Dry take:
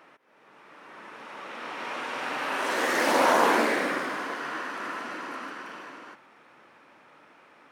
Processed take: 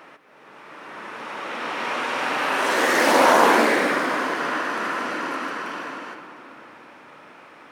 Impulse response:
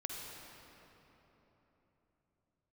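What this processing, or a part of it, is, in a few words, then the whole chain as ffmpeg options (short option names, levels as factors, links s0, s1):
ducked reverb: -filter_complex "[0:a]asplit=3[s0][s1][s2];[1:a]atrim=start_sample=2205[s3];[s1][s3]afir=irnorm=-1:irlink=0[s4];[s2]apad=whole_len=340347[s5];[s4][s5]sidechaincompress=threshold=0.0251:ratio=8:attack=16:release=390,volume=0.75[s6];[s0][s6]amix=inputs=2:normalize=0,volume=1.78"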